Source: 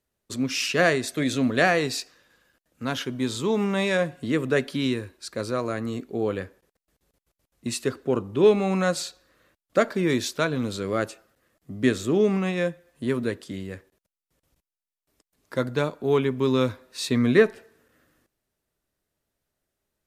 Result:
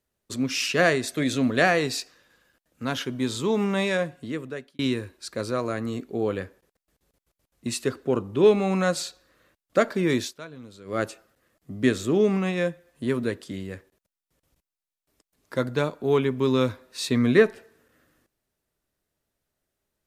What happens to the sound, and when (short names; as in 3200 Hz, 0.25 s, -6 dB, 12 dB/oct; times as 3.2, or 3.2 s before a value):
3.78–4.79 fade out
10.2–11 dip -16 dB, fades 0.15 s